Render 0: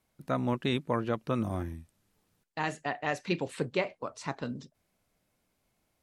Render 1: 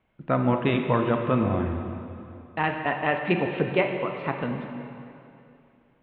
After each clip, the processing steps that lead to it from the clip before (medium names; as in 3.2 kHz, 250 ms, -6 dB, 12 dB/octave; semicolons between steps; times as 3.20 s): steep low-pass 3.2 kHz 48 dB/octave; reverberation RT60 2.7 s, pre-delay 23 ms, DRR 4 dB; trim +6.5 dB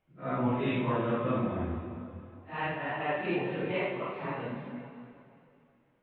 phase randomisation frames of 200 ms; trim -6.5 dB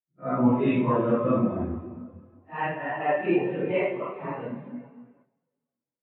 bass shelf 91 Hz -8.5 dB; gate -56 dBFS, range -7 dB; spectral contrast expander 1.5:1; trim +8.5 dB